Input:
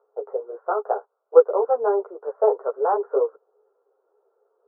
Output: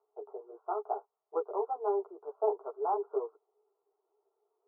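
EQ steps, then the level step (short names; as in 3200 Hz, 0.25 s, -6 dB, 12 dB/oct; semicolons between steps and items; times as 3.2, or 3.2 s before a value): air absorption 410 m; fixed phaser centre 350 Hz, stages 8; -6.5 dB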